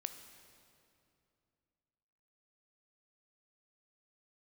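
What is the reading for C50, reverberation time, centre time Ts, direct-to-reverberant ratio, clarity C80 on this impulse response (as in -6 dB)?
9.0 dB, 2.6 s, 26 ms, 8.0 dB, 10.0 dB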